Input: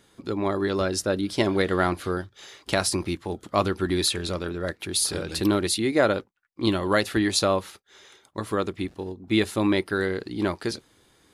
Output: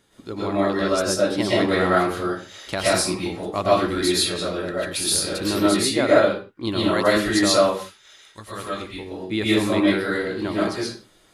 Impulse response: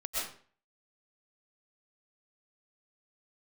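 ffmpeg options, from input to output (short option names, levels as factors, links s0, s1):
-filter_complex "[0:a]asettb=1/sr,asplit=3[s0][s1][s2];[s0]atrim=end=7.644[s3];[s1]atrim=start=7.64:end=8.96,asetpts=PTS-STARTPTS,afade=t=in:d=0.004:c=qsin,afade=t=out:st=1.316:d=0.004:c=qsin,equalizer=f=370:w=0.39:g=-9.5[s4];[s2]atrim=start=8.956[s5];[s3][s4]acrossfade=d=0.004:c1=hsin:c2=qsin[s6];[s6][s5]acrossfade=d=0.004:c1=qsin:c2=hsin[s7];[1:a]atrim=start_sample=2205,afade=t=out:st=0.36:d=0.01,atrim=end_sample=16317[s8];[s7][s8]afir=irnorm=-1:irlink=0"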